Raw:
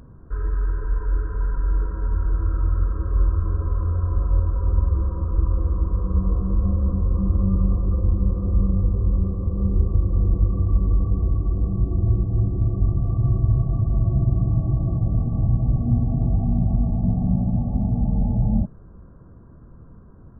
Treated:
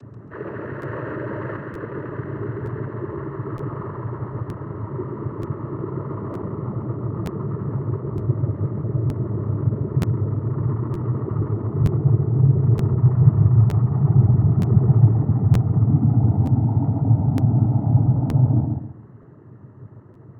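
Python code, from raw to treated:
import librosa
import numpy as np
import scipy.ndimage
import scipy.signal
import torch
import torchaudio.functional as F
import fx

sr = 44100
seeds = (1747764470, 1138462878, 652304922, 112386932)

y = fx.rider(x, sr, range_db=4, speed_s=0.5)
y = fx.peak_eq(y, sr, hz=140.0, db=8.5, octaves=1.4)
y = y + 0.8 * np.pad(y, (int(2.7 * sr / 1000.0), 0))[:len(y)]
y = fx.noise_vocoder(y, sr, seeds[0], bands=12)
y = fx.echo_feedback(y, sr, ms=136, feedback_pct=29, wet_db=-4.0)
y = fx.buffer_crackle(y, sr, first_s=0.81, period_s=0.92, block=512, kind='repeat')
y = fx.env_flatten(y, sr, amount_pct=70, at=(0.82, 1.57))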